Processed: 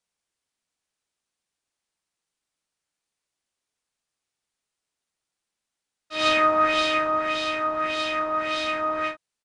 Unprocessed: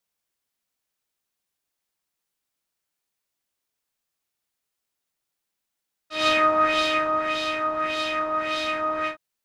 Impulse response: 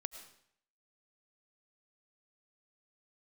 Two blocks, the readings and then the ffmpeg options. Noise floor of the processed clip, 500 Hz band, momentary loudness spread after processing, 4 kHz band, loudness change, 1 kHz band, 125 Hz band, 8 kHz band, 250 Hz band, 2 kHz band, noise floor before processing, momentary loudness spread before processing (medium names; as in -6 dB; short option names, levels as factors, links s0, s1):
under -85 dBFS, 0.0 dB, 7 LU, 0.0 dB, 0.0 dB, 0.0 dB, 0.0 dB, 0.0 dB, 0.0 dB, 0.0 dB, -83 dBFS, 7 LU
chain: -af "aresample=22050,aresample=44100"